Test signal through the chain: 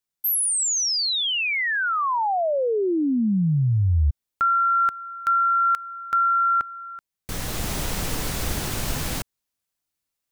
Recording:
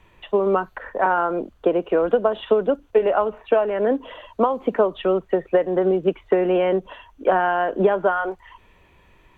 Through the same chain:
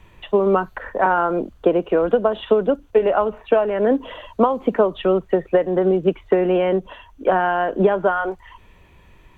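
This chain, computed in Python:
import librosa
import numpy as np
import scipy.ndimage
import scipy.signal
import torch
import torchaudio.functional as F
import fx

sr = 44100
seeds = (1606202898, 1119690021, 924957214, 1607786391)

p1 = fx.bass_treble(x, sr, bass_db=5, treble_db=3)
p2 = fx.rider(p1, sr, range_db=5, speed_s=0.5)
p3 = p1 + (p2 * 10.0 ** (1.5 / 20.0))
y = p3 * 10.0 ** (-5.5 / 20.0)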